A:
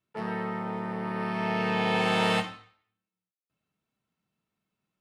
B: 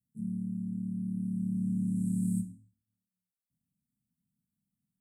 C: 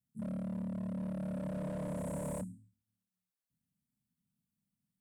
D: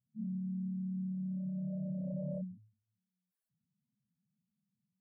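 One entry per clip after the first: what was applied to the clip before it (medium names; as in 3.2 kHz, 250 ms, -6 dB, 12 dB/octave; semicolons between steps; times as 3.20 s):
Chebyshev band-stop 260–7900 Hz, order 5; trim +1.5 dB
wavefolder -32 dBFS; trim -1.5 dB
spectral contrast enhancement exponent 3.4; trim +1 dB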